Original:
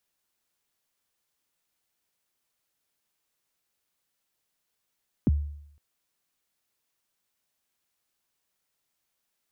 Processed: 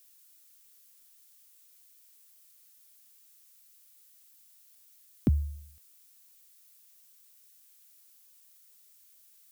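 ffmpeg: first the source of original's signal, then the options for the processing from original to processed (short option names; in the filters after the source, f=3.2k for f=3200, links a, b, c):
-f lavfi -i "aevalsrc='0.158*pow(10,-3*t/0.72)*sin(2*PI*(330*0.027/log(73/330)*(exp(log(73/330)*min(t,0.027)/0.027)-1)+73*max(t-0.027,0)))':d=0.51:s=44100"
-af "crystalizer=i=6.5:c=0,asuperstop=centerf=900:order=4:qfactor=5.1"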